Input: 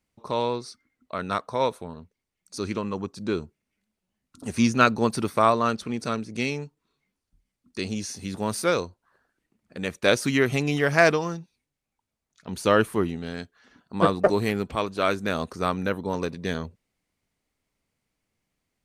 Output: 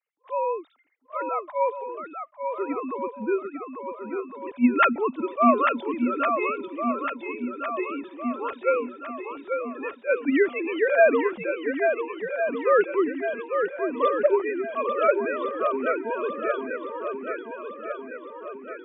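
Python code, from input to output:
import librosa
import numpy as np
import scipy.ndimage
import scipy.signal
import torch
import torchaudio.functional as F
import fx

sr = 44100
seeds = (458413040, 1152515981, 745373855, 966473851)

y = fx.sine_speech(x, sr)
y = fx.echo_swing(y, sr, ms=1407, ratio=1.5, feedback_pct=48, wet_db=-6.0)
y = fx.attack_slew(y, sr, db_per_s=370.0)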